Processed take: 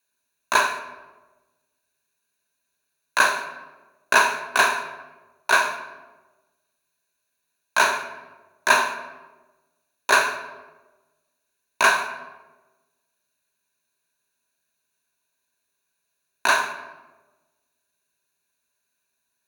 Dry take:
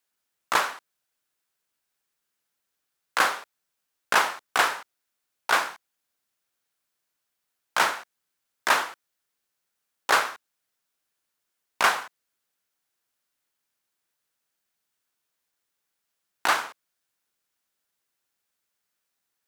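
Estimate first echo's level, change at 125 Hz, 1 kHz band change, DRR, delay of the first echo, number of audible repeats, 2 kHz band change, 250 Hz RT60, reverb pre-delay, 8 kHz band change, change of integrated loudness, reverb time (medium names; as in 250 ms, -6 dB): no echo, no reading, +3.5 dB, 7.0 dB, no echo, no echo, +6.0 dB, 1.4 s, 12 ms, +4.5 dB, +3.5 dB, 1.2 s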